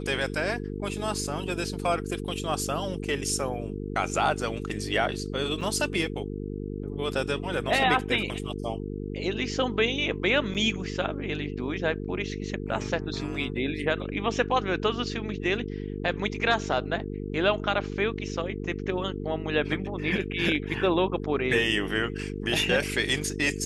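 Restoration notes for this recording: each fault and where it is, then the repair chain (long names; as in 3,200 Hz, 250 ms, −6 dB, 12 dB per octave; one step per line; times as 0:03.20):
mains buzz 50 Hz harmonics 9 −34 dBFS
0:05.61: drop-out 4.5 ms
0:10.54–0:10.55: drop-out 7.4 ms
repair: hum removal 50 Hz, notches 9
repair the gap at 0:05.61, 4.5 ms
repair the gap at 0:10.54, 7.4 ms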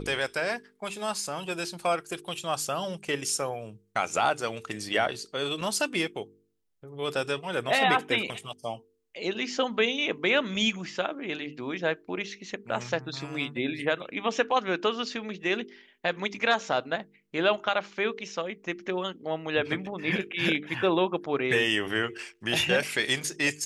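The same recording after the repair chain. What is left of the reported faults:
none of them is left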